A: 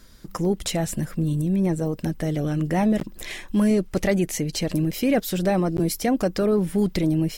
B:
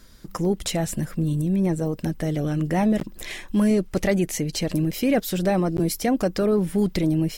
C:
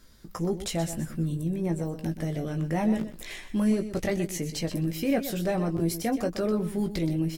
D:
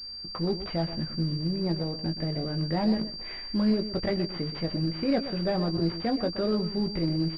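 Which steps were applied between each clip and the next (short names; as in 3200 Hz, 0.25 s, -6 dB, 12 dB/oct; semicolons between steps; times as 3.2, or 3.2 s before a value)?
nothing audible
doubler 18 ms -6.5 dB; on a send: echo 0.124 s -11.5 dB; on the sum: gain -6.5 dB
CVSD 32 kbps; pulse-width modulation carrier 4700 Hz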